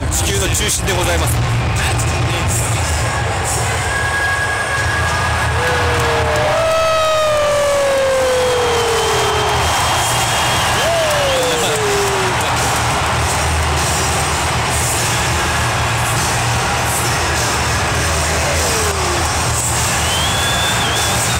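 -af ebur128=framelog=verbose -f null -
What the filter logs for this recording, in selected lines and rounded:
Integrated loudness:
  I:         -14.8 LUFS
  Threshold: -24.8 LUFS
Loudness range:
  LRA:         2.0 LU
  Threshold: -34.8 LUFS
  LRA low:   -16.0 LUFS
  LRA high:  -14.0 LUFS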